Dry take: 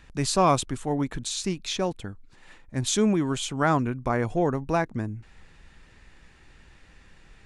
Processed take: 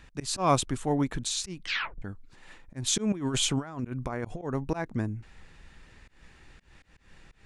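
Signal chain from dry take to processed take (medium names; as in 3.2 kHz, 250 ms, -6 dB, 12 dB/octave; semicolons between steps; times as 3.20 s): 1.57 s: tape stop 0.45 s; 3.12–4.42 s: compressor with a negative ratio -29 dBFS, ratio -0.5; slow attack 167 ms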